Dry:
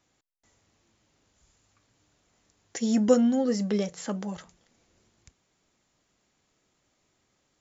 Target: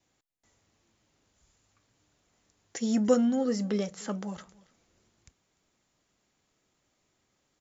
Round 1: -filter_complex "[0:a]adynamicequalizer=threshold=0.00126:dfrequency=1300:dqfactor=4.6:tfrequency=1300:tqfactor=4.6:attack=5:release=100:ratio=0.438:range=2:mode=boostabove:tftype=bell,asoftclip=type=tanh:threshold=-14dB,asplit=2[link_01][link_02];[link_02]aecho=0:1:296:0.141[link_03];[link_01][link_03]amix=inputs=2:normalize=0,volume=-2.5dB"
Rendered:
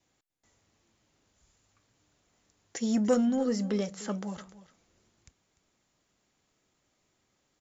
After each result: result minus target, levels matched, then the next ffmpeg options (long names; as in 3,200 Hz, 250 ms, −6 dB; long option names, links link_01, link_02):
soft clipping: distortion +14 dB; echo-to-direct +6.5 dB
-filter_complex "[0:a]adynamicequalizer=threshold=0.00126:dfrequency=1300:dqfactor=4.6:tfrequency=1300:tqfactor=4.6:attack=5:release=100:ratio=0.438:range=2:mode=boostabove:tftype=bell,asoftclip=type=tanh:threshold=-5dB,asplit=2[link_01][link_02];[link_02]aecho=0:1:296:0.141[link_03];[link_01][link_03]amix=inputs=2:normalize=0,volume=-2.5dB"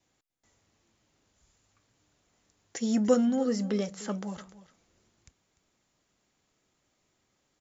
echo-to-direct +6.5 dB
-filter_complex "[0:a]adynamicequalizer=threshold=0.00126:dfrequency=1300:dqfactor=4.6:tfrequency=1300:tqfactor=4.6:attack=5:release=100:ratio=0.438:range=2:mode=boostabove:tftype=bell,asoftclip=type=tanh:threshold=-5dB,asplit=2[link_01][link_02];[link_02]aecho=0:1:296:0.0668[link_03];[link_01][link_03]amix=inputs=2:normalize=0,volume=-2.5dB"